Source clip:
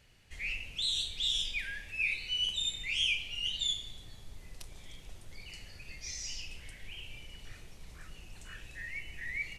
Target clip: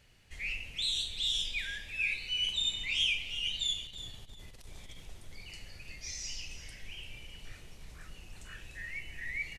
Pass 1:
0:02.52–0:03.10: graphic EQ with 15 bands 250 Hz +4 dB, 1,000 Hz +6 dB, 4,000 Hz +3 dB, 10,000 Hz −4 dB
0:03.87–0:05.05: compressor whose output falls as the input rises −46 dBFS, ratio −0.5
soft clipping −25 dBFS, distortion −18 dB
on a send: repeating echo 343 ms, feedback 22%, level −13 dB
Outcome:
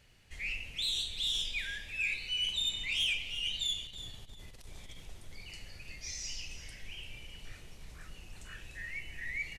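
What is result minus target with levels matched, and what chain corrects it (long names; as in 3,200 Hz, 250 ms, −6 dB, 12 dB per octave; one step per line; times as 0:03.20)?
soft clipping: distortion +12 dB
0:02.52–0:03.10: graphic EQ with 15 bands 250 Hz +4 dB, 1,000 Hz +6 dB, 4,000 Hz +3 dB, 10,000 Hz −4 dB
0:03.87–0:05.05: compressor whose output falls as the input rises −46 dBFS, ratio −0.5
soft clipping −17.5 dBFS, distortion −30 dB
on a send: repeating echo 343 ms, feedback 22%, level −13 dB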